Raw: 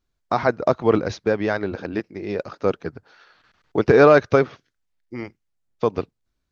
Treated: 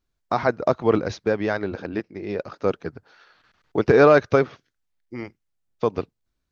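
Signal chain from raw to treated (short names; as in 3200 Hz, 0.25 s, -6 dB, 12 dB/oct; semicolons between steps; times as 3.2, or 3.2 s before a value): 1.82–2.52 air absorption 51 m; gain -1.5 dB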